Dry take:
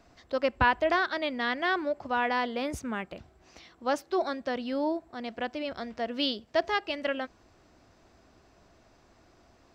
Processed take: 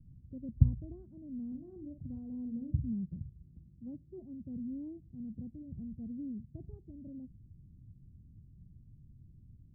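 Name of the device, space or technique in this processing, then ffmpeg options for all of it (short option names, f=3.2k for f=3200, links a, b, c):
the neighbour's flat through the wall: -filter_complex "[0:a]lowpass=f=170:w=0.5412,lowpass=f=170:w=1.3066,equalizer=f=130:t=o:w=0.93:g=7.5,bandreject=f=60:t=h:w=6,bandreject=f=120:t=h:w=6,asettb=1/sr,asplit=3[a][b][c];[a]atrim=end=1.474[d];[b]atrim=start=1.47:end=2.89,asetpts=PTS-STARTPTS,afade=t=in:d=0.004:c=qsin,afade=t=out:st=1.416:d=0.004:c=qsin,asplit=2[e][f];[f]adelay=48,volume=-6.5dB[g];[e][g]amix=inputs=2:normalize=0,atrim=end_sample=62622[h];[c]atrim=start=2.886[i];[d][h]acrossfade=d=0.004:c1=hsin:c2=qsin[j];[j][i]acrossfade=d=0.004:c1=qsin:c2=hsin,volume=8dB"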